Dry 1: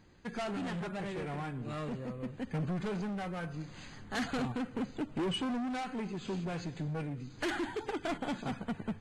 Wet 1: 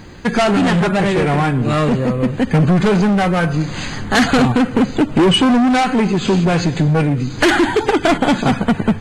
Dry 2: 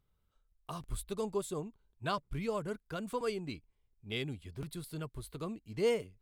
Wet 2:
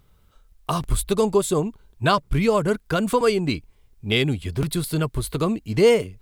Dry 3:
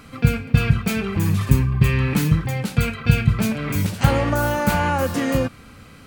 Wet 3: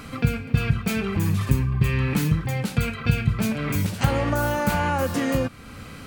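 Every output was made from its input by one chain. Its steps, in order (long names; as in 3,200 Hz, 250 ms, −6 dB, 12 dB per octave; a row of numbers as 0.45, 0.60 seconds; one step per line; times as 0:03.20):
downward compressor 1.5 to 1, threshold −39 dBFS
normalise the peak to −6 dBFS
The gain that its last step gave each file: +24.5, +19.0, +5.0 decibels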